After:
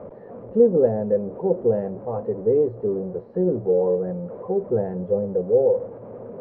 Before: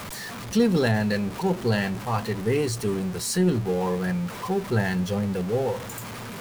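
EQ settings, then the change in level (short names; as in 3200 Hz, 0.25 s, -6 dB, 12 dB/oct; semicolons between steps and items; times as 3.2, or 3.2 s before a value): synth low-pass 520 Hz, resonance Q 4.5; air absorption 350 m; low shelf 190 Hz -10 dB; 0.0 dB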